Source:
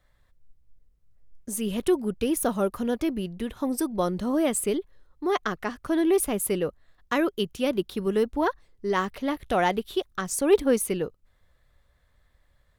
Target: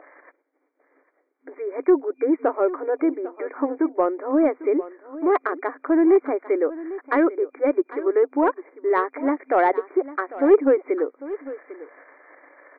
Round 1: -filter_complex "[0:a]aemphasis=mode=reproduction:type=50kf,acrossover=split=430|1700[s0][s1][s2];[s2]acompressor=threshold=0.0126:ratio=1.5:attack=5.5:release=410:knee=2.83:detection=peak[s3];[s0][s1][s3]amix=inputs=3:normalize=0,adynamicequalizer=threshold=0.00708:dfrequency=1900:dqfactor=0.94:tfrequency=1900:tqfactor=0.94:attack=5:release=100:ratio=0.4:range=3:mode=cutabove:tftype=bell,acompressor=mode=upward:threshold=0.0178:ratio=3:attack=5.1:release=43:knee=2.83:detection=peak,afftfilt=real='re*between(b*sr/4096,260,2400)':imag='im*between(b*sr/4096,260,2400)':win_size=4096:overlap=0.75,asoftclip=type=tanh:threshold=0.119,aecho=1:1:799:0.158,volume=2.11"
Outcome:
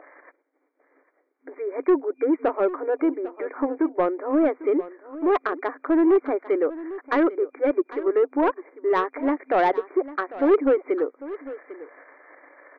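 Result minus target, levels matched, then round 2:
saturation: distortion +10 dB
-filter_complex "[0:a]aemphasis=mode=reproduction:type=50kf,acrossover=split=430|1700[s0][s1][s2];[s2]acompressor=threshold=0.0126:ratio=1.5:attack=5.5:release=410:knee=2.83:detection=peak[s3];[s0][s1][s3]amix=inputs=3:normalize=0,adynamicequalizer=threshold=0.00708:dfrequency=1900:dqfactor=0.94:tfrequency=1900:tqfactor=0.94:attack=5:release=100:ratio=0.4:range=3:mode=cutabove:tftype=bell,acompressor=mode=upward:threshold=0.0178:ratio=3:attack=5.1:release=43:knee=2.83:detection=peak,afftfilt=real='re*between(b*sr/4096,260,2400)':imag='im*between(b*sr/4096,260,2400)':win_size=4096:overlap=0.75,asoftclip=type=tanh:threshold=0.282,aecho=1:1:799:0.158,volume=2.11"

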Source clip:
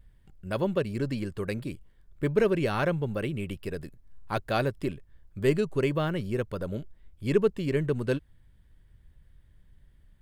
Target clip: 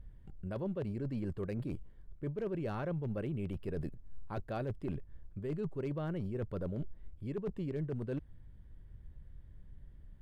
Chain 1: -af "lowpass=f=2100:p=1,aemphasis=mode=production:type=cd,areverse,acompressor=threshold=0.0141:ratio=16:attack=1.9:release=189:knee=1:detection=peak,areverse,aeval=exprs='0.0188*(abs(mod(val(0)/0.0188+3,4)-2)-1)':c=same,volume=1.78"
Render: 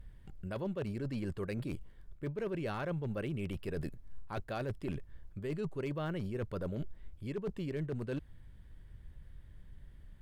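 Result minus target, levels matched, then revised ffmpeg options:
2 kHz band +5.5 dB
-af "lowpass=f=620:p=1,aemphasis=mode=production:type=cd,areverse,acompressor=threshold=0.0141:ratio=16:attack=1.9:release=189:knee=1:detection=peak,areverse,aeval=exprs='0.0188*(abs(mod(val(0)/0.0188+3,4)-2)-1)':c=same,volume=1.78"

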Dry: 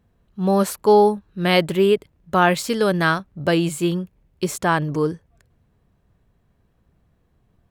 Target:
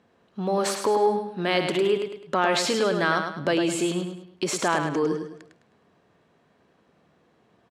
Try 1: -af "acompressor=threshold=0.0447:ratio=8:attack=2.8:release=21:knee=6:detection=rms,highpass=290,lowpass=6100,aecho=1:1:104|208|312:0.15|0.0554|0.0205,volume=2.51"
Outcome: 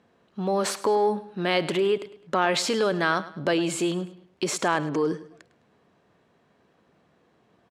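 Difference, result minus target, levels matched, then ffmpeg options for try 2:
echo-to-direct -10 dB
-af "acompressor=threshold=0.0447:ratio=8:attack=2.8:release=21:knee=6:detection=rms,highpass=290,lowpass=6100,aecho=1:1:104|208|312|416:0.473|0.175|0.0648|0.024,volume=2.51"

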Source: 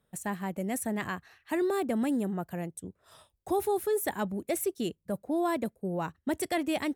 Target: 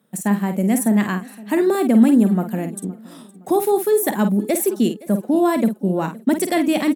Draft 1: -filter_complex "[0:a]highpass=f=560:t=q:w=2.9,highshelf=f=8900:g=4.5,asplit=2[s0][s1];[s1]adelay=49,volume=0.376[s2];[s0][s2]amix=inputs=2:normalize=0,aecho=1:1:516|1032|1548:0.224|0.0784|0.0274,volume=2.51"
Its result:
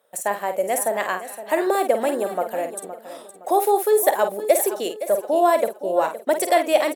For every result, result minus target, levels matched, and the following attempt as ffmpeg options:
250 Hz band -12.0 dB; echo-to-direct +8 dB
-filter_complex "[0:a]highpass=f=210:t=q:w=2.9,highshelf=f=8900:g=4.5,asplit=2[s0][s1];[s1]adelay=49,volume=0.376[s2];[s0][s2]amix=inputs=2:normalize=0,aecho=1:1:516|1032|1548:0.224|0.0784|0.0274,volume=2.51"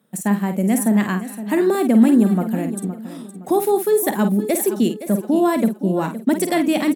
echo-to-direct +8 dB
-filter_complex "[0:a]highpass=f=210:t=q:w=2.9,highshelf=f=8900:g=4.5,asplit=2[s0][s1];[s1]adelay=49,volume=0.376[s2];[s0][s2]amix=inputs=2:normalize=0,aecho=1:1:516|1032|1548:0.0891|0.0312|0.0109,volume=2.51"

